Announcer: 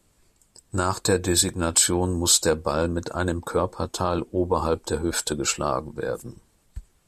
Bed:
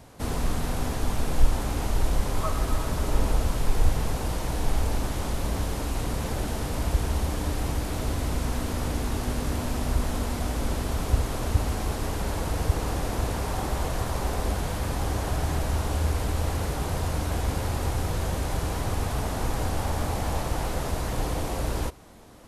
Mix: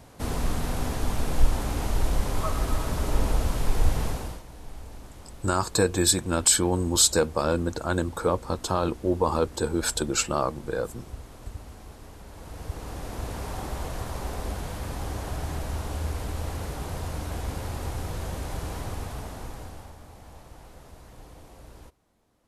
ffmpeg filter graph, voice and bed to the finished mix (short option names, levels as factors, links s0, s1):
-filter_complex "[0:a]adelay=4700,volume=0.891[s0];[1:a]volume=3.55,afade=t=out:st=4.05:d=0.38:silence=0.158489,afade=t=in:st=12.3:d=1.14:silence=0.266073,afade=t=out:st=18.77:d=1.2:silence=0.188365[s1];[s0][s1]amix=inputs=2:normalize=0"